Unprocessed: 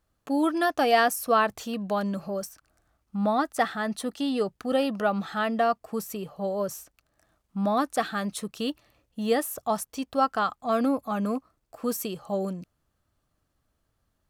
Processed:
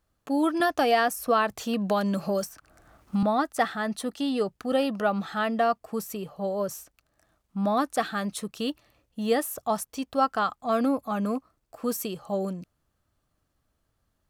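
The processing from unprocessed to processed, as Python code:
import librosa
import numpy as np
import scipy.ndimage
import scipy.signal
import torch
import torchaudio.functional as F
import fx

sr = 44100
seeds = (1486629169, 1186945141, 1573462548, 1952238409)

y = fx.band_squash(x, sr, depth_pct=70, at=(0.6, 3.23))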